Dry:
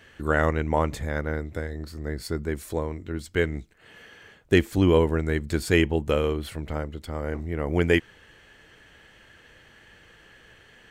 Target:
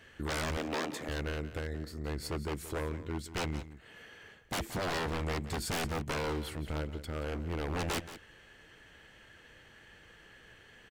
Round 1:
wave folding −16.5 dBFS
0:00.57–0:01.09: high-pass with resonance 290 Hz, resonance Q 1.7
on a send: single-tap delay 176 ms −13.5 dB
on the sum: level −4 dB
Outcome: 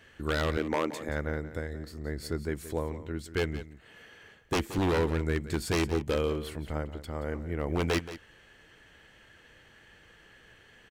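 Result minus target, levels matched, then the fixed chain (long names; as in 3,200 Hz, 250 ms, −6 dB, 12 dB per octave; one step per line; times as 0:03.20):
wave folding: distortion −12 dB
wave folding −24.5 dBFS
0:00.57–0:01.09: high-pass with resonance 290 Hz, resonance Q 1.7
on a send: single-tap delay 176 ms −13.5 dB
on the sum: level −4 dB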